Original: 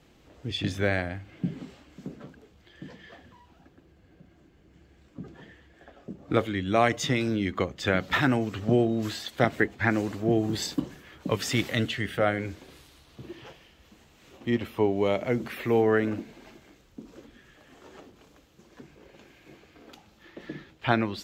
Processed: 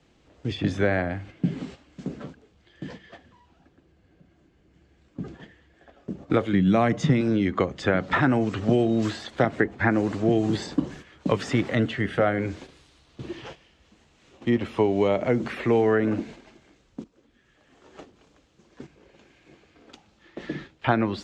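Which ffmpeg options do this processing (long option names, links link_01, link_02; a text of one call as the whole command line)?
ffmpeg -i in.wav -filter_complex "[0:a]asettb=1/sr,asplit=3[link_01][link_02][link_03];[link_01]atrim=end=6.534[link_04];[link_02]atrim=start=6.53:end=7.21,asetpts=PTS-STARTPTS,afade=type=in:duration=0.004:curve=qsin,afade=type=out:start_time=0.676:duration=0.004:curve=qsin,equalizer=frequency=170:width_type=o:width=0.89:gain=14.5[link_05];[link_03]atrim=start=7.206[link_06];[link_04][link_05]acrossfade=duration=0.004:curve1=hsin:curve2=qsin[link_07];[link_07][link_06]acrossfade=duration=0.004:curve1=qsin:curve2=hsin,asplit=2[link_08][link_09];[link_08]atrim=end=17.04,asetpts=PTS-STARTPTS,afade=type=out:start_time=17.036:duration=0.004:curve=hsin:silence=0.16788[link_10];[link_09]atrim=start=17.04,asetpts=PTS-STARTPTS,afade=type=in:duration=0.92:silence=0.16788[link_11];[link_10][link_11]concat=n=2:v=0:a=1,lowpass=frequency=8400:width=0.5412,lowpass=frequency=8400:width=1.3066,agate=range=-9dB:threshold=-47dB:ratio=16:detection=peak,acrossover=split=99|1800[link_12][link_13][link_14];[link_12]acompressor=threshold=-49dB:ratio=4[link_15];[link_13]acompressor=threshold=-24dB:ratio=4[link_16];[link_14]acompressor=threshold=-47dB:ratio=4[link_17];[link_15][link_16][link_17]amix=inputs=3:normalize=0,volume=6.5dB" out.wav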